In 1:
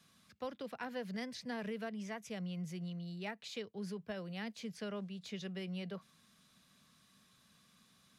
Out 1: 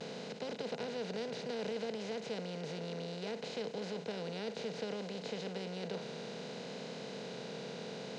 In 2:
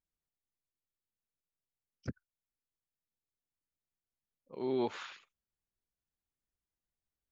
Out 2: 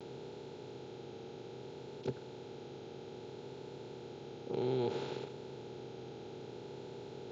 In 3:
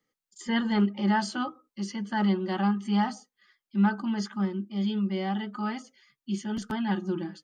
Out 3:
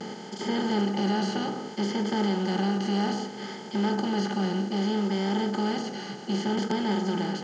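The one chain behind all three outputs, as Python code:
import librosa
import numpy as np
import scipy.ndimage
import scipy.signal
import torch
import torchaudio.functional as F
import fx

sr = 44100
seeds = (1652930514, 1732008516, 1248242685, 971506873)

y = fx.bin_compress(x, sr, power=0.2)
y = fx.vibrato(y, sr, rate_hz=0.62, depth_cents=38.0)
y = fx.cabinet(y, sr, low_hz=120.0, low_slope=12, high_hz=7400.0, hz=(130.0, 450.0, 1100.0, 1800.0, 4000.0), db=(8, 8, -7, -8, 3))
y = y * 10.0 ** (-7.0 / 20.0)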